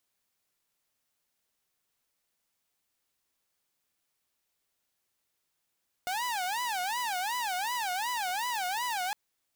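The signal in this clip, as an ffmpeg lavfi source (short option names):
-f lavfi -i "aevalsrc='0.0422*(2*mod((857*t-138/(2*PI*2.7)*sin(2*PI*2.7*t)),1)-1)':d=3.06:s=44100"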